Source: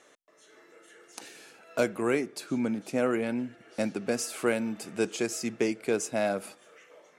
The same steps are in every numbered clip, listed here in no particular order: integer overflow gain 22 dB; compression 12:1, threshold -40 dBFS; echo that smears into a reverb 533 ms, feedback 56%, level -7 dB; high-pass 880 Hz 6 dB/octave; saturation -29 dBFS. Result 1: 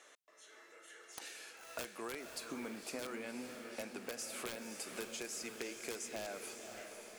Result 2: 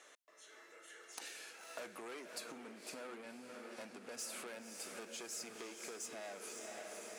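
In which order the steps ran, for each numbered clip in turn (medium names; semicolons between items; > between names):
high-pass > integer overflow > compression > echo that smears into a reverb > saturation; saturation > integer overflow > echo that smears into a reverb > compression > high-pass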